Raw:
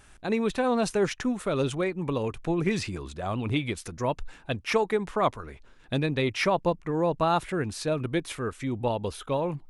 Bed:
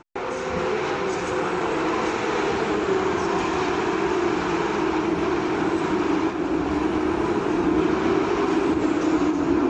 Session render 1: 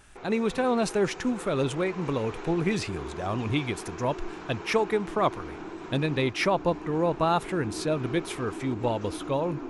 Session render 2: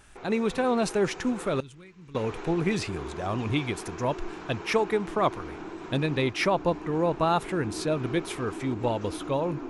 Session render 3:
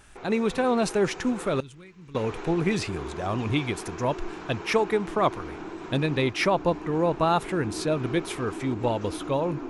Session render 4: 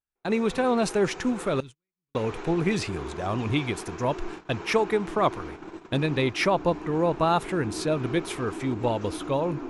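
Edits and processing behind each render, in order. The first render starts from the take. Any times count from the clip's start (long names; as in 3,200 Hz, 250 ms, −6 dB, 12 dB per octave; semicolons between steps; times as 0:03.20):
mix in bed −16.5 dB
0:01.60–0:02.15: guitar amp tone stack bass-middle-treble 6-0-2
level +1.5 dB
noise gate −36 dBFS, range −44 dB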